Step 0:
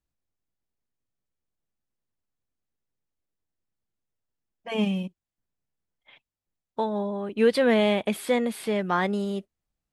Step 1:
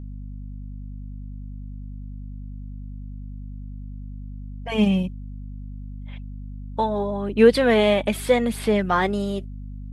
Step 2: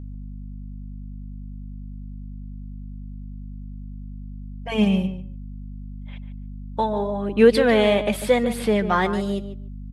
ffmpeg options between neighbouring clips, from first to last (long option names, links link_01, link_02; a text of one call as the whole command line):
ffmpeg -i in.wav -af "aphaser=in_gain=1:out_gain=1:delay=3.5:decay=0.34:speed=0.81:type=sinusoidal,aeval=exprs='val(0)+0.0141*(sin(2*PI*50*n/s)+sin(2*PI*2*50*n/s)/2+sin(2*PI*3*50*n/s)/3+sin(2*PI*4*50*n/s)/4+sin(2*PI*5*50*n/s)/5)':channel_layout=same,volume=3.5dB" out.wav
ffmpeg -i in.wav -filter_complex "[0:a]asplit=2[link_01][link_02];[link_02]adelay=145,lowpass=frequency=2400:poles=1,volume=-10.5dB,asplit=2[link_03][link_04];[link_04]adelay=145,lowpass=frequency=2400:poles=1,volume=0.16[link_05];[link_01][link_03][link_05]amix=inputs=3:normalize=0" out.wav